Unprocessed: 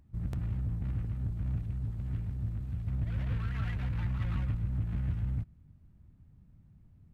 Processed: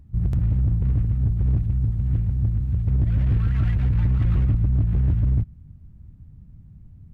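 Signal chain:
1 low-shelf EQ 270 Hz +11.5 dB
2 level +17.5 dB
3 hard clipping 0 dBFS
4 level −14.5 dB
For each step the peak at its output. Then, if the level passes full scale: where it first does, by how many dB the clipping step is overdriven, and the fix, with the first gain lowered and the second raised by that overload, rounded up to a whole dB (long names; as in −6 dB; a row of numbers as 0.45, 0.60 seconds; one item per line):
−12.0, +5.5, 0.0, −14.5 dBFS
step 2, 5.5 dB
step 2 +11.5 dB, step 4 −8.5 dB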